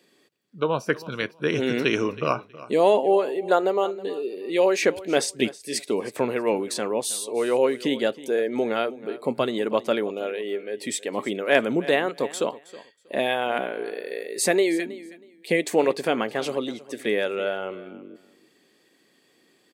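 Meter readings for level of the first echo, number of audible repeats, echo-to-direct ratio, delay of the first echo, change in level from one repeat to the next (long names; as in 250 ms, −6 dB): −18.0 dB, 2, −18.0 dB, 320 ms, −14.5 dB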